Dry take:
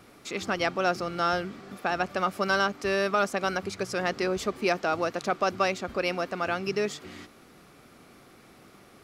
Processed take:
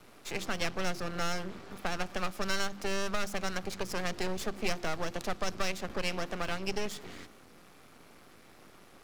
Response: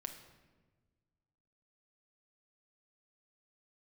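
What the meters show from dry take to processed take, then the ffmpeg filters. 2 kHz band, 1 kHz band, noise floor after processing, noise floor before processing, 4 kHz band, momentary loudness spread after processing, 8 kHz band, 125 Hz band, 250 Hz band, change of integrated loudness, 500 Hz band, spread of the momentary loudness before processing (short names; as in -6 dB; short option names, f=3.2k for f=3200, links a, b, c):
-7.0 dB, -9.5 dB, -56 dBFS, -54 dBFS, -2.5 dB, 6 LU, +1.0 dB, -2.5 dB, -5.5 dB, -7.0 dB, -9.0 dB, 7 LU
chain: -filter_complex "[0:a]asplit=2[a][b];[1:a]atrim=start_sample=2205,asetrate=66150,aresample=44100[c];[b][c]afir=irnorm=-1:irlink=0,volume=-7dB[d];[a][d]amix=inputs=2:normalize=0,aeval=exprs='max(val(0),0)':c=same,bandreject=f=50:t=h:w=6,bandreject=f=100:t=h:w=6,bandreject=f=150:t=h:w=6,bandreject=f=200:t=h:w=6,bandreject=f=250:t=h:w=6,bandreject=f=300:t=h:w=6,bandreject=f=350:t=h:w=6,acrossover=split=160|3000[e][f][g];[f]acompressor=threshold=-32dB:ratio=6[h];[e][h][g]amix=inputs=3:normalize=0"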